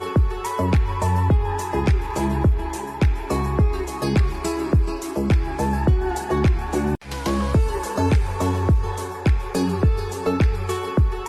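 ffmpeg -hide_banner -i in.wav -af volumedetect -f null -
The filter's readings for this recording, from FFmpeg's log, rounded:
mean_volume: -20.2 dB
max_volume: -9.6 dB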